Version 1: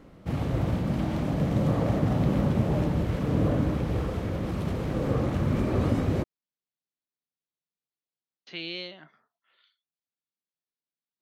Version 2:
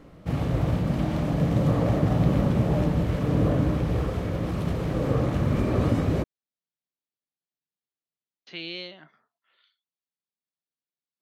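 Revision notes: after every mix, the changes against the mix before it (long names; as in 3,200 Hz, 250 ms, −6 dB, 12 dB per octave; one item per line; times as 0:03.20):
reverb: on, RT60 0.70 s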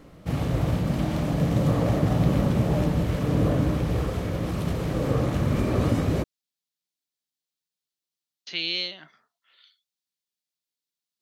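speech: add high-shelf EQ 2,700 Hz +11 dB
master: add high-shelf EQ 4,000 Hz +7 dB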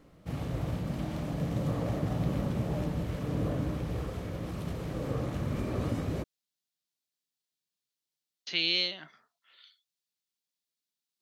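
background −9.0 dB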